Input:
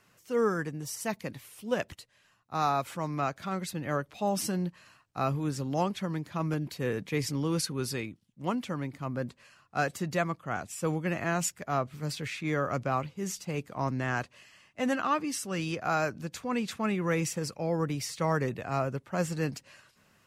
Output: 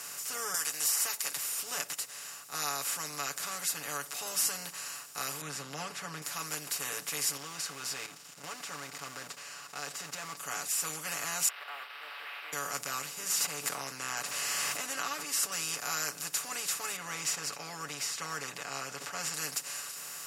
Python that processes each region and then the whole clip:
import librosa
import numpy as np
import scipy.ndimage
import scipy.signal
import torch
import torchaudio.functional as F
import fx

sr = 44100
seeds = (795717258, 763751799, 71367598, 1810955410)

y = fx.chain(x, sr, fx.highpass(hz=730.0, slope=12),
    fx.high_shelf(hz=9300.0, db=5.5),
    fx.band_squash(depth_pct=100), at=(0.54, 1.37))
y = fx.chain(y, sr, fx.lowpass(hz=2300.0, slope=12),
    fx.peak_eq(hz=160.0, db=14.0, octaves=1.1), at=(5.41, 6.22))
y = fx.chain(y, sr, fx.law_mismatch(coded='mu'),
    fx.level_steps(step_db=12),
    fx.air_absorb(metres=170.0), at=(7.37, 10.37))
y = fx.chain(y, sr, fx.delta_mod(bps=16000, step_db=-45.0),
    fx.bessel_highpass(hz=1200.0, order=6), at=(11.48, 12.53))
y = fx.chain(y, sr, fx.high_shelf(hz=4200.0, db=-11.0),
    fx.pre_swell(db_per_s=25.0), at=(13.17, 15.52))
y = fx.chain(y, sr, fx.air_absorb(metres=170.0),
    fx.sustainer(db_per_s=120.0), at=(16.96, 19.34))
y = fx.bin_compress(y, sr, power=0.4)
y = np.diff(y, prepend=0.0)
y = y + 0.72 * np.pad(y, (int(7.0 * sr / 1000.0), 0))[:len(y)]